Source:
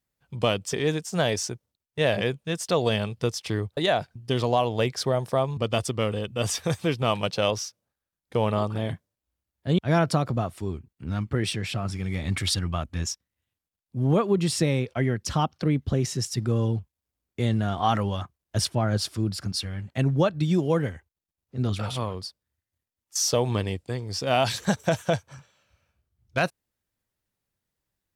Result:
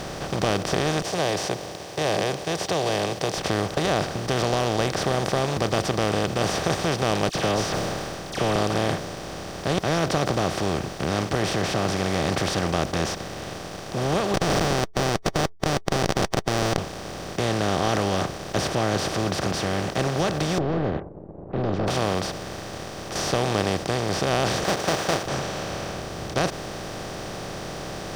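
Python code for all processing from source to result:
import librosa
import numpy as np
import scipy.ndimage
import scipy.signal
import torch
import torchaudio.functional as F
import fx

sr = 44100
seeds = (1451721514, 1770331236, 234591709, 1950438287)

y = fx.chain(x, sr, fx.highpass(hz=350.0, slope=12),
    fx.fixed_phaser(hz=560.0, stages=4), at=(1.02, 3.38))
y = fx.chain(y, sr, fx.dispersion(late='lows', ms=62.0, hz=1900.0),
    fx.sustainer(db_per_s=100.0), at=(7.29, 8.56))
y = fx.chain(y, sr, fx.high_shelf(hz=5900.0, db=3.5),
    fx.quant_companded(bits=6),
    fx.schmitt(flips_db=-22.0), at=(14.34, 16.78))
y = fx.chain(y, sr, fx.leveller(passes=3),
    fx.ladder_lowpass(hz=400.0, resonance_pct=40), at=(20.58, 21.88))
y = fx.chain(y, sr, fx.halfwave_hold(),
    fx.highpass(hz=620.0, slope=12), at=(24.64, 25.26))
y = fx.bin_compress(y, sr, power=0.2)
y = fx.high_shelf(y, sr, hz=8000.0, db=-9.0)
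y = y * 10.0 ** (-8.5 / 20.0)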